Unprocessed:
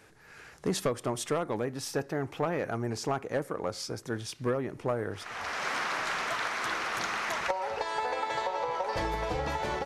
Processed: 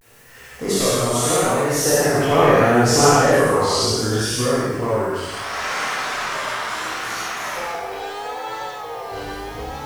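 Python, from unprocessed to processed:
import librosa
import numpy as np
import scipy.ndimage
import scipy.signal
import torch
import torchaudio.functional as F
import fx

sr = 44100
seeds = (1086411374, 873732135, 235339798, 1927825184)

y = fx.spec_trails(x, sr, decay_s=1.13)
y = fx.doppler_pass(y, sr, speed_mps=19, closest_m=18.0, pass_at_s=2.83)
y = fx.quant_dither(y, sr, seeds[0], bits=12, dither='triangular')
y = fx.high_shelf(y, sr, hz=6600.0, db=6.5)
y = fx.rev_gated(y, sr, seeds[1], gate_ms=200, shape='flat', drr_db=-8.0)
y = fx.vibrato(y, sr, rate_hz=0.73, depth_cents=97.0)
y = F.gain(torch.from_numpy(y), 6.5).numpy()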